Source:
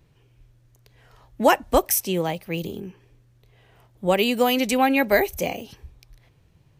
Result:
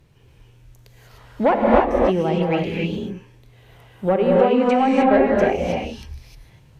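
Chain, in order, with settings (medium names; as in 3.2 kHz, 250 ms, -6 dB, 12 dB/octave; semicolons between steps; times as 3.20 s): 4.16–5.02 s: high-pass 260 Hz; low-pass that closes with the level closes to 980 Hz, closed at -18.5 dBFS; saturation -12.5 dBFS, distortion -16 dB; gated-style reverb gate 330 ms rising, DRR -3 dB; trim +3.5 dB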